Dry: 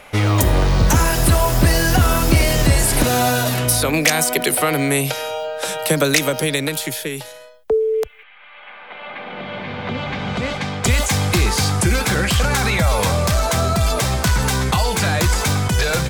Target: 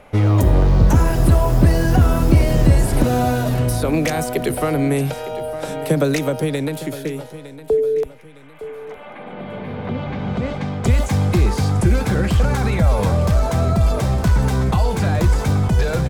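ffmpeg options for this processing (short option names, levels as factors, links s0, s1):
-filter_complex "[0:a]tiltshelf=f=1100:g=7.5,asplit=2[s0][s1];[s1]aecho=0:1:910|1820|2730:0.178|0.0658|0.0243[s2];[s0][s2]amix=inputs=2:normalize=0,volume=0.562"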